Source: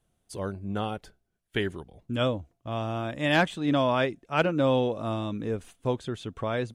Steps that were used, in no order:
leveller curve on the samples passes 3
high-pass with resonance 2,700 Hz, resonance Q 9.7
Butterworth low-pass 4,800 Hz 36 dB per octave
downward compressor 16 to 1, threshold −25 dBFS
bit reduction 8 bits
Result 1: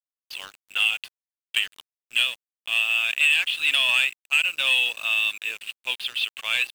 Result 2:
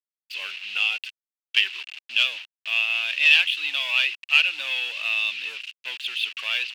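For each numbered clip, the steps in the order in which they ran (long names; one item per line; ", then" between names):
high-pass with resonance, then downward compressor, then Butterworth low-pass, then leveller curve on the samples, then bit reduction
downward compressor, then bit reduction, then Butterworth low-pass, then leveller curve on the samples, then high-pass with resonance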